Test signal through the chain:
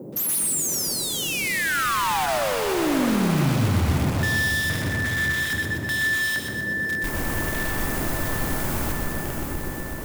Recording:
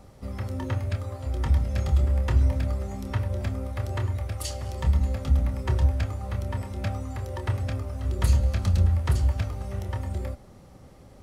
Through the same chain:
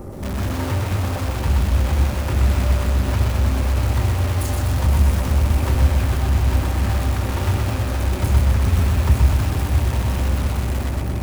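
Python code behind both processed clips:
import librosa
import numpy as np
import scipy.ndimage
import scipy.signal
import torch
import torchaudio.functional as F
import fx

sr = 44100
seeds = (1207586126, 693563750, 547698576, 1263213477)

p1 = fx.rattle_buzz(x, sr, strikes_db=-26.0, level_db=-26.0)
p2 = p1 + fx.echo_diffused(p1, sr, ms=553, feedback_pct=58, wet_db=-6.0, dry=0)
p3 = fx.power_curve(p2, sr, exponent=0.7)
p4 = fx.peak_eq(p3, sr, hz=4000.0, db=-15.0, octaves=2.2)
p5 = fx.hum_notches(p4, sr, base_hz=60, count=2)
p6 = fx.dmg_noise_band(p5, sr, seeds[0], low_hz=120.0, high_hz=510.0, level_db=-42.0)
p7 = fx.notch(p6, sr, hz=710.0, q=20.0)
p8 = (np.mod(10.0 ** (25.0 / 20.0) * p7 + 1.0, 2.0) - 1.0) / 10.0 ** (25.0 / 20.0)
p9 = p7 + (p8 * librosa.db_to_amplitude(-5.0))
p10 = fx.peak_eq(p9, sr, hz=460.0, db=-5.5, octaves=0.42)
p11 = fx.buffer_glitch(p10, sr, at_s=(4.69, 5.41, 9.21), block=2048, repeats=1)
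p12 = fx.echo_crushed(p11, sr, ms=124, feedback_pct=55, bits=8, wet_db=-3.5)
y = p12 * librosa.db_to_amplitude(1.5)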